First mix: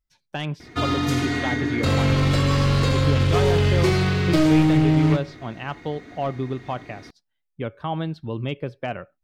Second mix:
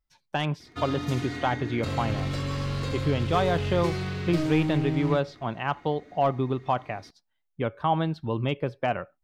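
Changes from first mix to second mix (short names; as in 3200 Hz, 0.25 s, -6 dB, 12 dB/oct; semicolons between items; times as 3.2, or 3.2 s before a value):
speech: add bell 930 Hz +5.5 dB 1.1 oct; background -10.5 dB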